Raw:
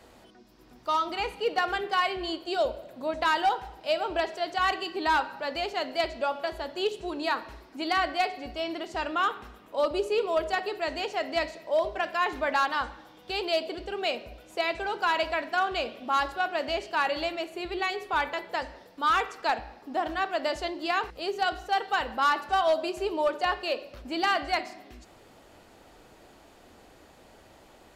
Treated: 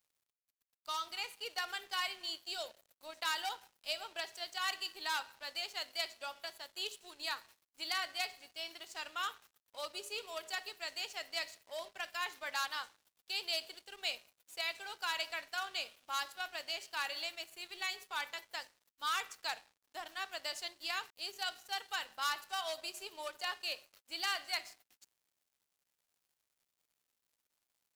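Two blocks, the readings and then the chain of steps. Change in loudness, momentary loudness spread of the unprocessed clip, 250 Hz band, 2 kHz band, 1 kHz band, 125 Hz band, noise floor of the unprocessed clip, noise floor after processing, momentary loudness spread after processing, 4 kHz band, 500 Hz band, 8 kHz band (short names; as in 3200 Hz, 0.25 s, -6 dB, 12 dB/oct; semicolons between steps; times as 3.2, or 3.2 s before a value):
-10.5 dB, 8 LU, -25.0 dB, -9.5 dB, -15.0 dB, under -25 dB, -55 dBFS, under -85 dBFS, 9 LU, -4.0 dB, -20.0 dB, +2.0 dB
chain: differentiator; crossover distortion -59.5 dBFS; gain +3 dB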